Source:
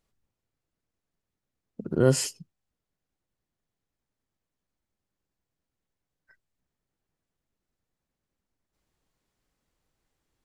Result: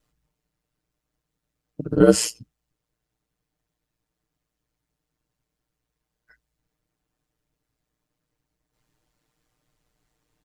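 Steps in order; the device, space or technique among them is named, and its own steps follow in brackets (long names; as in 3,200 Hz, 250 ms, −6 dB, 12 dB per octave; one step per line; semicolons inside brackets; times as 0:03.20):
ring-modulated robot voice (ring modulation 58 Hz; comb filter 6.6 ms, depth 93%)
level +5.5 dB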